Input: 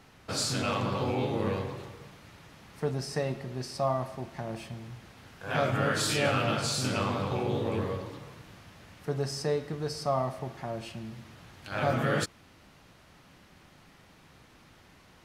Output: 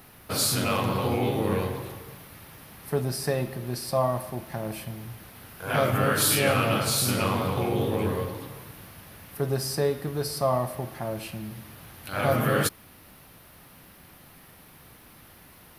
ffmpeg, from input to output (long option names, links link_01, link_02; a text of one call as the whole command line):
ffmpeg -i in.wav -af "asetrate=42601,aresample=44100,aexciter=amount=10.7:drive=3.3:freq=10000,volume=4dB" out.wav